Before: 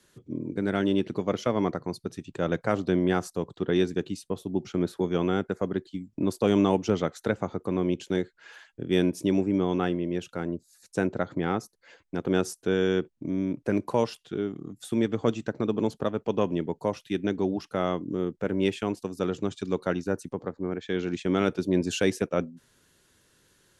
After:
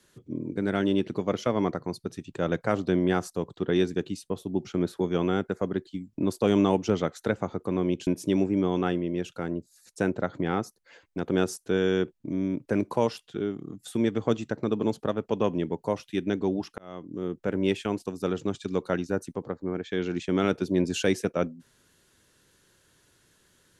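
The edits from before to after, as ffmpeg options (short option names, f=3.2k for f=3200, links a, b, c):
-filter_complex "[0:a]asplit=3[a][b][c];[a]atrim=end=8.072[d];[b]atrim=start=9.038:end=17.75,asetpts=PTS-STARTPTS,afade=t=out:st=8.708:d=0.004:c=hsin[e];[c]atrim=start=17.75,asetpts=PTS-STARTPTS,afade=t=in:d=0.66[f];[e][f]concat=n=2:v=0:a=1[g];[d][g]acrossfade=d=0.004:c1=hsin:c2=hsin"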